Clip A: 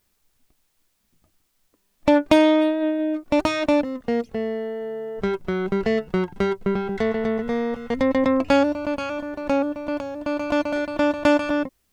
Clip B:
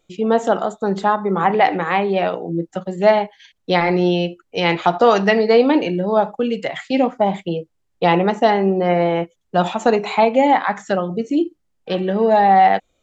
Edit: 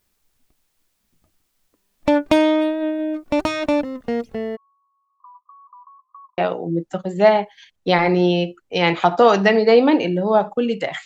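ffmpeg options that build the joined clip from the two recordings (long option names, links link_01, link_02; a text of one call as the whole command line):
ffmpeg -i cue0.wav -i cue1.wav -filter_complex "[0:a]asplit=3[link_01][link_02][link_03];[link_01]afade=type=out:start_time=4.55:duration=0.02[link_04];[link_02]asuperpass=centerf=1100:order=20:qfactor=4.5,afade=type=in:start_time=4.55:duration=0.02,afade=type=out:start_time=6.38:duration=0.02[link_05];[link_03]afade=type=in:start_time=6.38:duration=0.02[link_06];[link_04][link_05][link_06]amix=inputs=3:normalize=0,apad=whole_dur=11.05,atrim=end=11.05,atrim=end=6.382[link_07];[1:a]atrim=start=2.198:end=6.87[link_08];[link_07][link_08]acrossfade=duration=0.004:curve1=hsin:curve2=hsin" out.wav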